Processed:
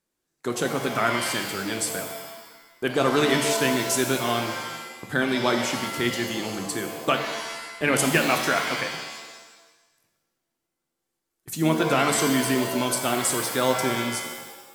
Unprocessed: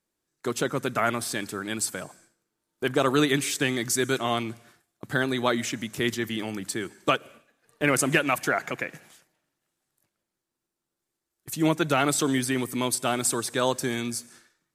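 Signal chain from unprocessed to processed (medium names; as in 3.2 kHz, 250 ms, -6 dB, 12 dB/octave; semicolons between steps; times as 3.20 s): pitch-shifted reverb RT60 1.1 s, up +7 st, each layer -2 dB, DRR 5 dB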